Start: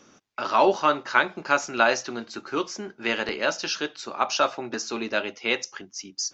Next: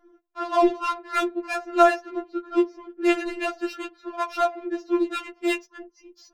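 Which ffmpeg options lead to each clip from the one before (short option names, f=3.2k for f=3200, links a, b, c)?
-af "lowshelf=f=420:g=11.5,adynamicsmooth=sensitivity=1.5:basefreq=1.2k,afftfilt=real='re*4*eq(mod(b,16),0)':imag='im*4*eq(mod(b,16),0)':win_size=2048:overlap=0.75"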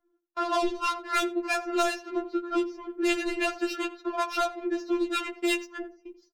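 -filter_complex "[0:a]agate=range=-22dB:threshold=-48dB:ratio=16:detection=peak,acrossover=split=140|3000[a][b][c];[b]acompressor=threshold=-30dB:ratio=6[d];[a][d][c]amix=inputs=3:normalize=0,asplit=2[e][f];[f]adelay=86,lowpass=f=1.4k:p=1,volume=-13dB,asplit=2[g][h];[h]adelay=86,lowpass=f=1.4k:p=1,volume=0.23,asplit=2[i][j];[j]adelay=86,lowpass=f=1.4k:p=1,volume=0.23[k];[e][g][i][k]amix=inputs=4:normalize=0,volume=4.5dB"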